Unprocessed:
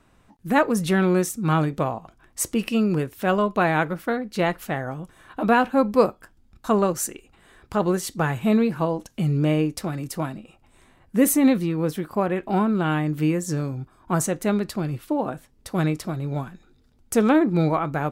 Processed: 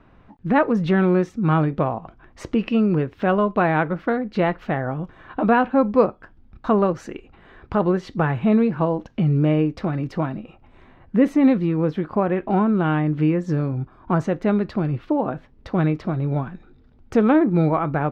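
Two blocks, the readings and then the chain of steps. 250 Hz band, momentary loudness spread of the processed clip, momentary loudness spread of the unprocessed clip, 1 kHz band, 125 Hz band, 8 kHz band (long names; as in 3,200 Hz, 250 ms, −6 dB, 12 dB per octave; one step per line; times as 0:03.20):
+2.5 dB, 9 LU, 11 LU, +1.5 dB, +3.5 dB, below −20 dB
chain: high-shelf EQ 4,700 Hz −9.5 dB
in parallel at +2.5 dB: downward compressor, threshold −29 dBFS, peak gain reduction 16 dB
on the sum: high-frequency loss of the air 230 metres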